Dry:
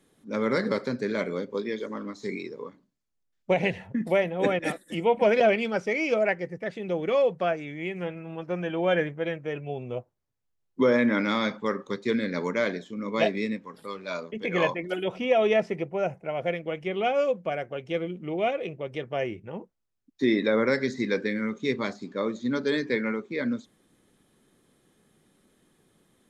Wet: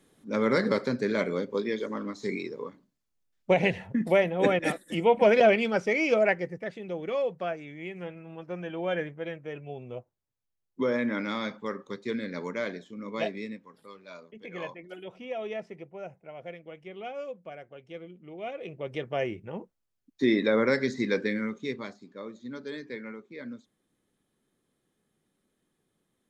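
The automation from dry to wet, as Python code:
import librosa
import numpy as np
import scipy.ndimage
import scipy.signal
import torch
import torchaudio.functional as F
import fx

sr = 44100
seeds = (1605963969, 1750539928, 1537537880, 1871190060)

y = fx.gain(x, sr, db=fx.line((6.38, 1.0), (6.87, -6.0), (13.11, -6.0), (14.17, -13.0), (18.37, -13.0), (18.88, -0.5), (21.34, -0.5), (22.04, -12.0)))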